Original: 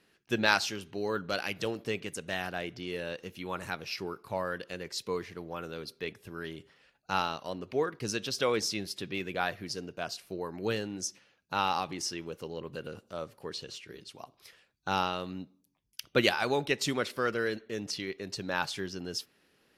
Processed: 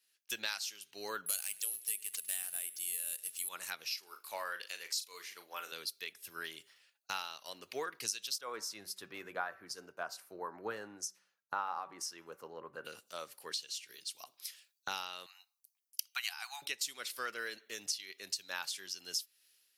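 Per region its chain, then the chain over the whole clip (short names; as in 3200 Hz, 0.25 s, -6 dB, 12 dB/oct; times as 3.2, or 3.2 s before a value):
1.26–3.49 careless resampling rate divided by 4×, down none, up zero stuff + air absorption 65 m + feedback echo 0.101 s, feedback 48%, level -21 dB
3.99–5.72 HPF 600 Hz 6 dB/oct + doubler 40 ms -9.5 dB
8.38–12.85 resonant high shelf 1900 Hz -13 dB, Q 1.5 + de-hum 191.5 Hz, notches 15
15.26–16.62 brick-wall FIR high-pass 680 Hz + notch 3500 Hz, Q 6.3
whole clip: differentiator; compressor 6:1, threshold -53 dBFS; three-band expander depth 70%; gain +15.5 dB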